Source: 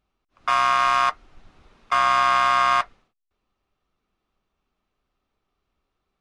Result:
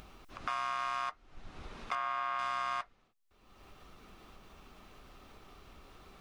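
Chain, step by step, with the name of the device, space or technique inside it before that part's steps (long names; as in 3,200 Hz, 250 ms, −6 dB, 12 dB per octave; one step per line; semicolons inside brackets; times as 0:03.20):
upward and downward compression (upward compression, threshold −26 dBFS; downward compressor 3 to 1, threshold −30 dBFS, peak gain reduction 10.5 dB)
0:01.95–0:02.39: bass and treble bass −7 dB, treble −13 dB
level −6 dB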